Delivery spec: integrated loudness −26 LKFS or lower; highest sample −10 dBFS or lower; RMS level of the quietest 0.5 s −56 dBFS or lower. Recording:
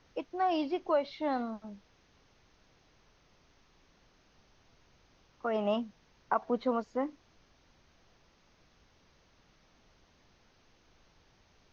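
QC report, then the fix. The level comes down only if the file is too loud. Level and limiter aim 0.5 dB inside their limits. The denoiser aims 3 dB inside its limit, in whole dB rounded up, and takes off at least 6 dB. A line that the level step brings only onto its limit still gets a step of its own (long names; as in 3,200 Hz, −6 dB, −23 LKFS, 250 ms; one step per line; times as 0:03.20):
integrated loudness −33.5 LKFS: in spec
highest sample −15.0 dBFS: in spec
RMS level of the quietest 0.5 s −66 dBFS: in spec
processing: no processing needed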